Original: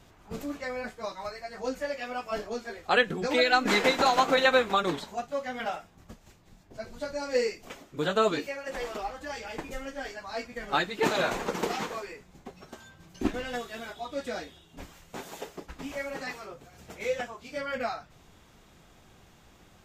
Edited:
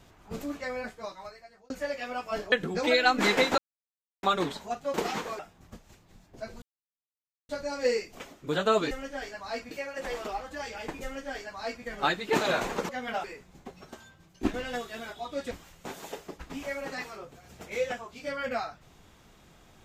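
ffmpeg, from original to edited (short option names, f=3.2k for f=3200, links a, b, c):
-filter_complex "[0:a]asplit=14[a][b][c][d][e][f][g][h][i][j][k][l][m][n];[a]atrim=end=1.7,asetpts=PTS-STARTPTS,afade=t=out:st=0.77:d=0.93[o];[b]atrim=start=1.7:end=2.522,asetpts=PTS-STARTPTS,afade=t=in:d=0.004:c=hsin[p];[c]atrim=start=2.988:end=4.05,asetpts=PTS-STARTPTS,afade=t=out:st=1.058:d=0.004:c=hsin[q];[d]atrim=start=4.05:end=4.7,asetpts=PTS-STARTPTS,volume=0[r];[e]atrim=start=4.7:end=5.412,asetpts=PTS-STARTPTS,afade=t=in:d=0.004:c=hsin[s];[f]atrim=start=11.588:end=12.042[t];[g]atrim=start=5.758:end=6.99,asetpts=PTS-STARTPTS,afade=t=out:st=1.228:d=0.004:c=hsin,apad=pad_dur=0.87[u];[h]atrim=start=6.99:end=8.412,asetpts=PTS-STARTPTS,afade=t=in:d=0.004:c=hsin[v];[i]atrim=start=9.738:end=10.542[w];[j]atrim=start=8.408:end=11.592[x];[k]atrim=start=5.408:end=5.762[y];[l]atrim=start=12.038:end=13.23,asetpts=PTS-STARTPTS,afade=t=out:st=0.682:d=0.51:silence=0.298538[z];[m]atrim=start=13.23:end=14.312,asetpts=PTS-STARTPTS,afade=t=in:d=0.004:c=hsin:silence=0.298538[aa];[n]atrim=start=14.798[ab];[o][p]concat=n=2:v=0:a=1[ac];[q][r][s]concat=n=3:v=0:a=1[ad];[ac][ad]acrossfade=d=0.004:c1=hsin:c2=hsin[ae];[ae][t]acrossfade=d=0.004:c1=hsin:c2=hsin[af];[u][v]concat=n=2:v=0:a=1[ag];[af][ag]acrossfade=d=0.004:c1=hsin:c2=hsin[ah];[ah][w]acrossfade=d=0.004:c1=hsin:c2=hsin[ai];[ai][x]acrossfade=d=0.004:c1=hsin:c2=hsin[aj];[aj][y]acrossfade=d=0.004:c1=hsin:c2=hsin[ak];[z][aa]concat=n=2:v=0:a=1[al];[ak][al]acrossfade=d=0.004:c1=hsin:c2=hsin[am];[am][ab]acrossfade=d=0.004:c1=hsin:c2=hsin"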